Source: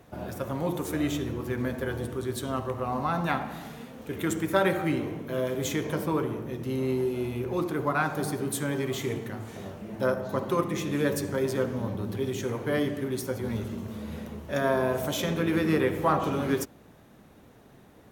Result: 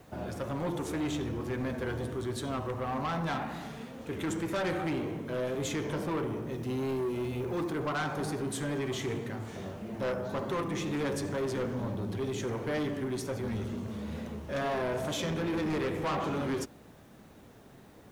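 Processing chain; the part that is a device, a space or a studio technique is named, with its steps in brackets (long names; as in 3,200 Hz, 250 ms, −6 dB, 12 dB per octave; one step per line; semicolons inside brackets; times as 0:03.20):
compact cassette (soft clipping −28 dBFS, distortion −9 dB; low-pass filter 8,600 Hz 12 dB per octave; tape wow and flutter; white noise bed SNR 36 dB)
0:06.51–0:07.73: high-shelf EQ 8,500 Hz +4.5 dB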